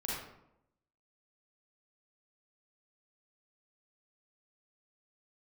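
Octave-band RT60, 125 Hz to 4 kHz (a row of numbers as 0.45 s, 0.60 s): 0.95 s, 0.95 s, 0.85 s, 0.80 s, 0.60 s, 0.45 s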